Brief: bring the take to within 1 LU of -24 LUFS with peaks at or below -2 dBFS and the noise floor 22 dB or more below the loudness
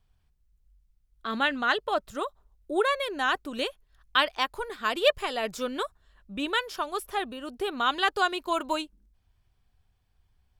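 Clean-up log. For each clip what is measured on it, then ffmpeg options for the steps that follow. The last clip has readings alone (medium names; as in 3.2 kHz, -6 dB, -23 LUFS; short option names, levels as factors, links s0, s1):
loudness -28.5 LUFS; peak level -8.0 dBFS; loudness target -24.0 LUFS
-> -af "volume=1.68"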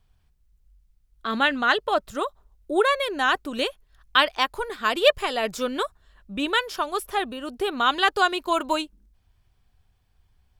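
loudness -24.0 LUFS; peak level -3.5 dBFS; noise floor -65 dBFS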